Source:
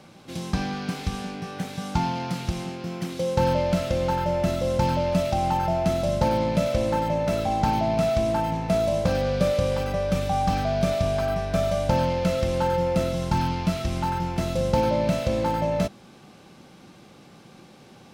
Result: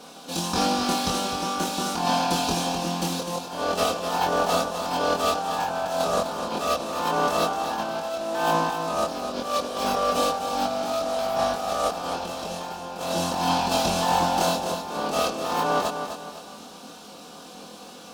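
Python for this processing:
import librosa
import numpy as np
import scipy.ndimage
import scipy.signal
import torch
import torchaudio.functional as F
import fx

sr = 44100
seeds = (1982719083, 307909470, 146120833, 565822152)

p1 = fx.lower_of_two(x, sr, delay_ms=4.1)
p2 = fx.highpass(p1, sr, hz=610.0, slope=6)
p3 = fx.peak_eq(p2, sr, hz=2000.0, db=-14.5, octaves=0.56)
p4 = fx.over_compress(p3, sr, threshold_db=-34.0, ratio=-0.5)
p5 = fx.doubler(p4, sr, ms=24.0, db=-2.5)
p6 = p5 + fx.echo_feedback(p5, sr, ms=253, feedback_pct=38, wet_db=-8, dry=0)
y = F.gain(torch.from_numpy(p6), 7.0).numpy()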